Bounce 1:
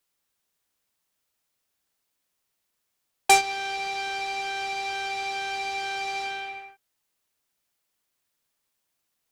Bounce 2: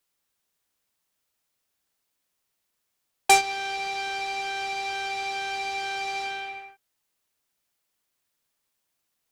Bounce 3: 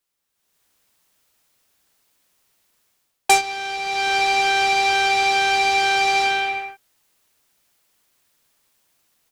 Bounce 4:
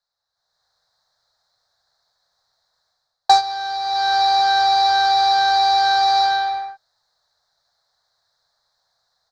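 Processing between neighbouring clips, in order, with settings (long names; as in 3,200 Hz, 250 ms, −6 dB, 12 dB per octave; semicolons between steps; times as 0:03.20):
no processing that can be heard
automatic gain control gain up to 14 dB; level −1.5 dB
drawn EQ curve 110 Hz 0 dB, 160 Hz −3 dB, 290 Hz −23 dB, 480 Hz −1 dB, 720 Hz +9 dB, 1,000 Hz +4 dB, 1,700 Hz +4 dB, 2,800 Hz −25 dB, 4,000 Hz +12 dB, 10,000 Hz −20 dB; level −3 dB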